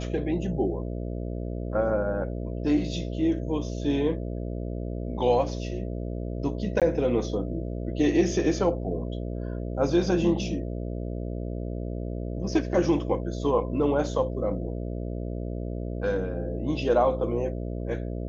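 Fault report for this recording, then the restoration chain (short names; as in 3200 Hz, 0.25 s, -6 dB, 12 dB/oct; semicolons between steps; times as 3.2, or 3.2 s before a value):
buzz 60 Hz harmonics 11 -32 dBFS
6.8–6.82 gap 17 ms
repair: de-hum 60 Hz, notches 11; interpolate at 6.8, 17 ms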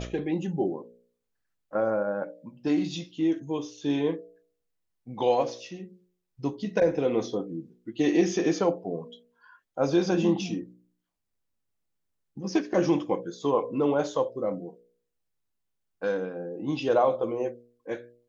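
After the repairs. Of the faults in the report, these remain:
none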